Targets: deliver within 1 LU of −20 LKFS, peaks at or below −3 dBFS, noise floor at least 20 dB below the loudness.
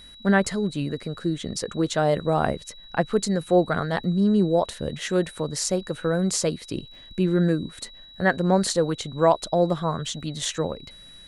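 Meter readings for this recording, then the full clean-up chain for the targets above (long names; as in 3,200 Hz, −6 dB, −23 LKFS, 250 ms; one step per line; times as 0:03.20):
crackle rate 34 per second; interfering tone 3,900 Hz; level of the tone −45 dBFS; integrated loudness −24.5 LKFS; sample peak −6.5 dBFS; target loudness −20.0 LKFS
→ click removal
notch filter 3,900 Hz, Q 30
level +4.5 dB
brickwall limiter −3 dBFS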